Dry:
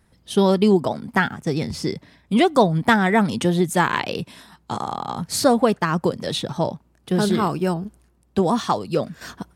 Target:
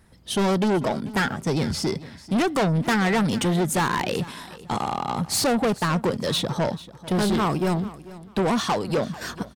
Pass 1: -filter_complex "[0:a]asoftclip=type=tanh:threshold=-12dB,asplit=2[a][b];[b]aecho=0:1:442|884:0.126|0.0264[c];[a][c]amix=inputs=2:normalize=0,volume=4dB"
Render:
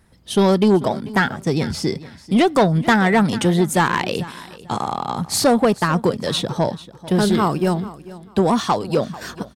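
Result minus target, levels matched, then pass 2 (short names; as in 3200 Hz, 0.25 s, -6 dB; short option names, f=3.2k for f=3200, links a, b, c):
soft clip: distortion -9 dB
-filter_complex "[0:a]asoftclip=type=tanh:threshold=-22.5dB,asplit=2[a][b];[b]aecho=0:1:442|884:0.126|0.0264[c];[a][c]amix=inputs=2:normalize=0,volume=4dB"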